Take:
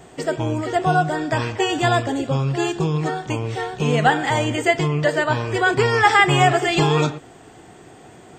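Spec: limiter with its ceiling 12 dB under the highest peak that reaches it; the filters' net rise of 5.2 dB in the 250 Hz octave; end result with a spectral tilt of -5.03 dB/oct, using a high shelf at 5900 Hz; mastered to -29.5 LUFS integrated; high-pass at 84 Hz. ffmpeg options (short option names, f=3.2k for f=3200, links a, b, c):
-af "highpass=84,equalizer=f=250:t=o:g=8,highshelf=f=5.9k:g=4,volume=-7dB,alimiter=limit=-20.5dB:level=0:latency=1"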